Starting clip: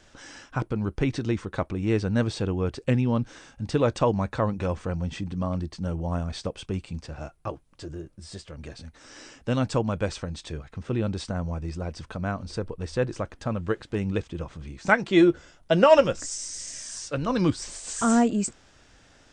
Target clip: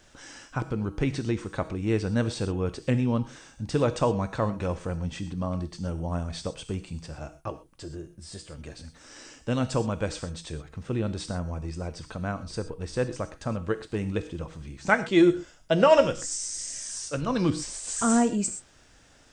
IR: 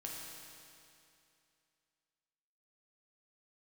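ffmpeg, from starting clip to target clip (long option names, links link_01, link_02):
-filter_complex "[0:a]asplit=2[link_01][link_02];[link_02]highshelf=frequency=5300:gain=9.5[link_03];[1:a]atrim=start_sample=2205,afade=type=out:start_time=0.18:duration=0.01,atrim=end_sample=8379,highshelf=frequency=8000:gain=12[link_04];[link_03][link_04]afir=irnorm=-1:irlink=0,volume=-5dB[link_05];[link_01][link_05]amix=inputs=2:normalize=0,volume=-4dB"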